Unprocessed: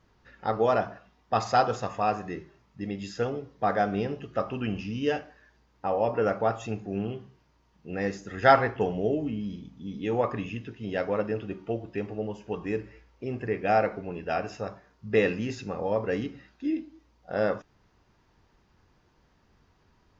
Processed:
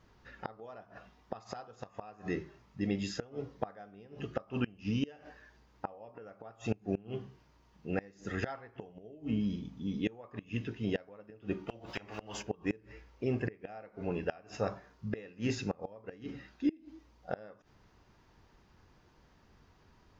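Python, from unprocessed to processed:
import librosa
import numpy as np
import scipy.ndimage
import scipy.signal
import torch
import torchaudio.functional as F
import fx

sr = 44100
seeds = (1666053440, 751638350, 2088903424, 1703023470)

y = fx.gate_flip(x, sr, shuts_db=-21.0, range_db=-26)
y = fx.spectral_comp(y, sr, ratio=4.0, at=(11.68, 12.41), fade=0.02)
y = F.gain(torch.from_numpy(y), 1.0).numpy()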